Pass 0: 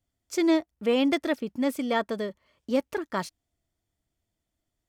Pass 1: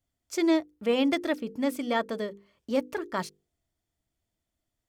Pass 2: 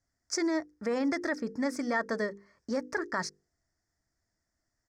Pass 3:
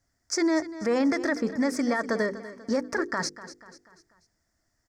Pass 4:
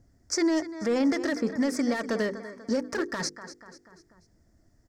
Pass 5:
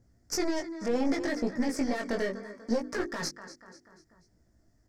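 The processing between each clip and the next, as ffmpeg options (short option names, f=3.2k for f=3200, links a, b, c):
-af "bandreject=f=50:t=h:w=6,bandreject=f=100:t=h:w=6,bandreject=f=150:t=h:w=6,bandreject=f=200:t=h:w=6,bandreject=f=250:t=h:w=6,bandreject=f=300:t=h:w=6,bandreject=f=350:t=h:w=6,bandreject=f=400:t=h:w=6,bandreject=f=450:t=h:w=6,bandreject=f=500:t=h:w=6,volume=-1dB"
-af "alimiter=limit=-23dB:level=0:latency=1:release=55,firequalizer=gain_entry='entry(490,0);entry(1200,4);entry(1800,10);entry(2900,-19);entry(5100,10);entry(12000,-14)':delay=0.05:min_phase=1"
-af "alimiter=level_in=0.5dB:limit=-24dB:level=0:latency=1:release=41,volume=-0.5dB,aecho=1:1:244|488|732|976:0.178|0.0818|0.0376|0.0173,volume=7dB"
-filter_complex "[0:a]acrossover=split=530|2400[a][b][c];[a]acompressor=mode=upward:threshold=-48dB:ratio=2.5[d];[b]asoftclip=type=hard:threshold=-33dB[e];[d][e][c]amix=inputs=3:normalize=0"
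-af "aeval=exprs='0.158*(cos(1*acos(clip(val(0)/0.158,-1,1)))-cos(1*PI/2))+0.0501*(cos(2*acos(clip(val(0)/0.158,-1,1)))-cos(2*PI/2))':c=same,flanger=delay=16.5:depth=4.8:speed=0.68"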